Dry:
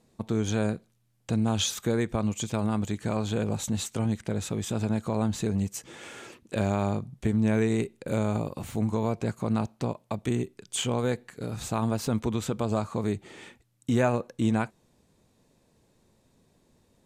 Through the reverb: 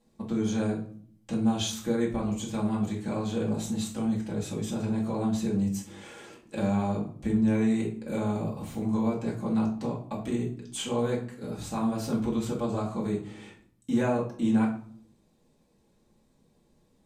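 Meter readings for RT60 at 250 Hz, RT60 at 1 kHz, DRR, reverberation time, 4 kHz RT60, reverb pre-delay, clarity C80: 0.90 s, 0.50 s, −4.5 dB, 0.55 s, 0.35 s, 3 ms, 12.5 dB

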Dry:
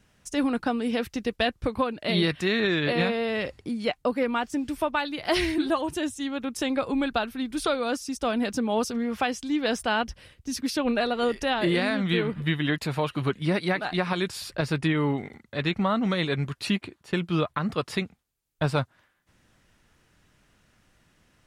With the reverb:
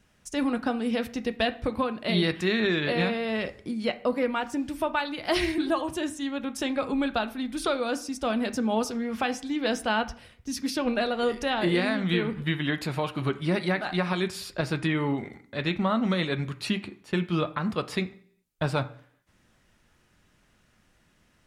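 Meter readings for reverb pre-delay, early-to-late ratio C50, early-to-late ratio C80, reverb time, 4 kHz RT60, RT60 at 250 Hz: 3 ms, 16.5 dB, 20.0 dB, 0.60 s, 0.60 s, 0.70 s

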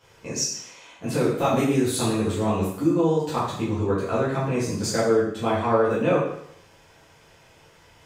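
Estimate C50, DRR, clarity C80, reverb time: 1.5 dB, −10.5 dB, 5.5 dB, 0.70 s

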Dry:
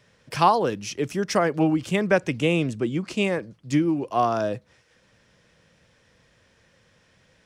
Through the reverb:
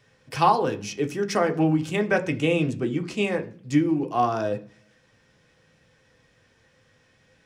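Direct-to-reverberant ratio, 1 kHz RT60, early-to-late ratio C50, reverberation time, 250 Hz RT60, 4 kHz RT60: 3.5 dB, 0.40 s, 16.0 dB, 0.45 s, 0.70 s, 0.50 s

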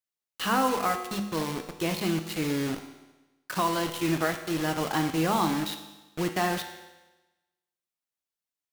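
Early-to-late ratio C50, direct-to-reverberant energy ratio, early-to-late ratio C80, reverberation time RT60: 8.5 dB, 5.5 dB, 10.5 dB, 1.1 s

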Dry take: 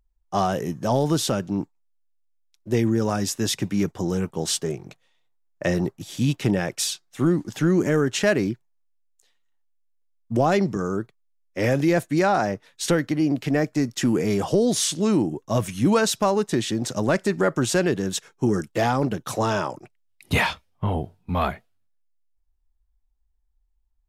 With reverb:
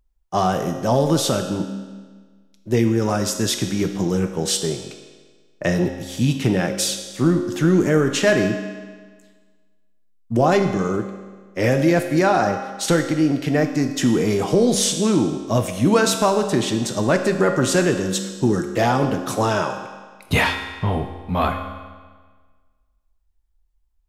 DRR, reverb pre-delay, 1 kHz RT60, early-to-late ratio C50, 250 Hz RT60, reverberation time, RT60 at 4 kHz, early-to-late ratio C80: 5.0 dB, 4 ms, 1.5 s, 7.5 dB, 1.5 s, 1.5 s, 1.4 s, 9.0 dB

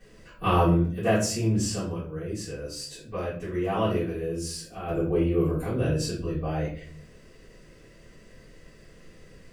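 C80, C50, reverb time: 10.0 dB, 5.0 dB, 0.50 s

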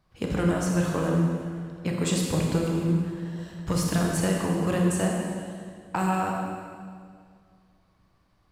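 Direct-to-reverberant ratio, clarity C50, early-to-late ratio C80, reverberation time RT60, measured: −1.0 dB, 1.0 dB, 2.0 dB, 2.0 s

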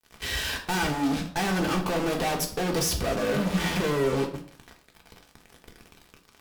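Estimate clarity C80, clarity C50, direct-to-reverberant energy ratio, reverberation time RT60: 13.5 dB, 10.5 dB, 2.0 dB, 0.50 s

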